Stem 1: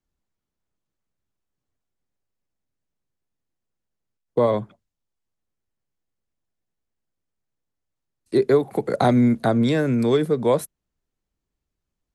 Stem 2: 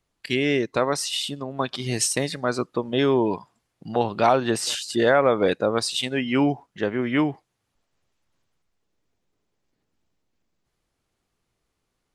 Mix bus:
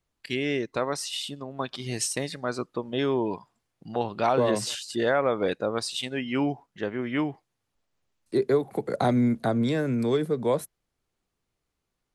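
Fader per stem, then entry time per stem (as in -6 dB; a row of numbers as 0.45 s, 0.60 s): -5.5 dB, -5.5 dB; 0.00 s, 0.00 s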